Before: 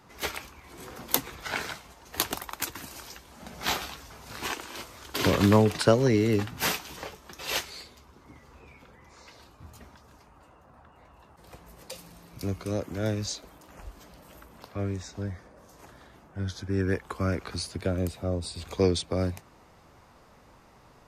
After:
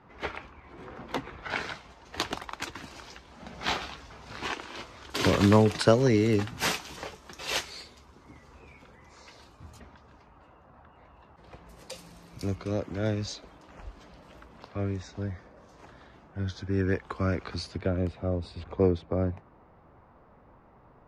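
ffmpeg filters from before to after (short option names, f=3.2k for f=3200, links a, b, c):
-af "asetnsamples=n=441:p=0,asendcmd='1.5 lowpass f 4500;5.1 lowpass f 8900;9.8 lowpass f 3600;11.69 lowpass f 8900;12.55 lowpass f 4600;17.78 lowpass f 2600;18.64 lowpass f 1400',lowpass=2.2k"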